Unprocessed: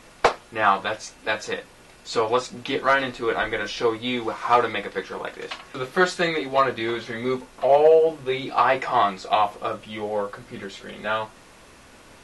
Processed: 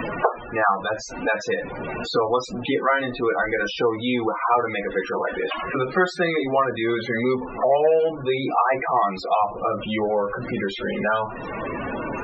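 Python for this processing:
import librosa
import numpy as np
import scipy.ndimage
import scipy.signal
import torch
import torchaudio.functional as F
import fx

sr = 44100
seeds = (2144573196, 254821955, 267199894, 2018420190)

y = x + 0.5 * 10.0 ** (-30.0 / 20.0) * np.sign(x)
y = fx.spec_topn(y, sr, count=32)
y = fx.band_squash(y, sr, depth_pct=70)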